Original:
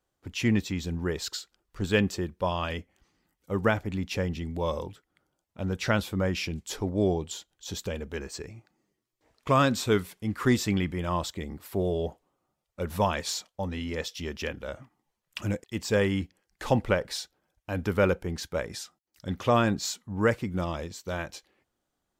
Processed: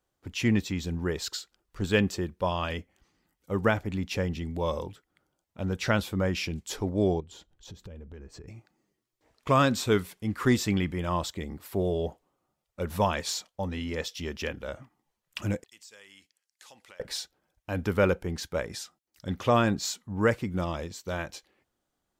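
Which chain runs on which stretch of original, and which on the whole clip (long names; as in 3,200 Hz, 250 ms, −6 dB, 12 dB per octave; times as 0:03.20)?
0:07.20–0:08.48: spectral tilt −3 dB per octave + downward compressor 4 to 1, threshold −44 dBFS
0:15.69–0:17.00: resonant band-pass 8,000 Hz, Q 0.66 + downward compressor 3 to 1, threshold −51 dBFS
whole clip: no processing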